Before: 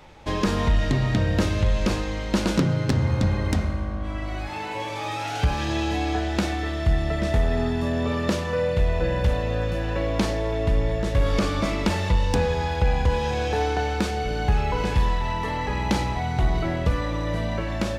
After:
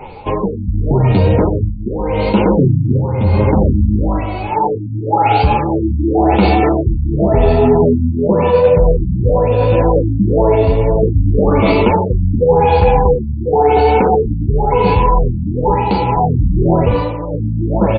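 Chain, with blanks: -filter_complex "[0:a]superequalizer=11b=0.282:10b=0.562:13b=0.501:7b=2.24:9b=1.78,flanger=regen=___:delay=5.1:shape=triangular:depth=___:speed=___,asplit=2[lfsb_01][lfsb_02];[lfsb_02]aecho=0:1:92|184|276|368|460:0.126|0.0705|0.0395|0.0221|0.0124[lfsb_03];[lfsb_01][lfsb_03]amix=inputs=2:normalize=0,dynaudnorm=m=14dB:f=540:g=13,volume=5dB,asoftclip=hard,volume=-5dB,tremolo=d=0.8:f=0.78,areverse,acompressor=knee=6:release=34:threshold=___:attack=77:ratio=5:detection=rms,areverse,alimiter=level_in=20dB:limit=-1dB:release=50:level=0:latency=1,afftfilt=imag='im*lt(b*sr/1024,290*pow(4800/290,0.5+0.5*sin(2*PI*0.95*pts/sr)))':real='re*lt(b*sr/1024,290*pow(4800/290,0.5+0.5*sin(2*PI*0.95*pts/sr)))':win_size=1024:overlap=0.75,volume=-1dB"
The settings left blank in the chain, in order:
16, 6.4, 1.9, -32dB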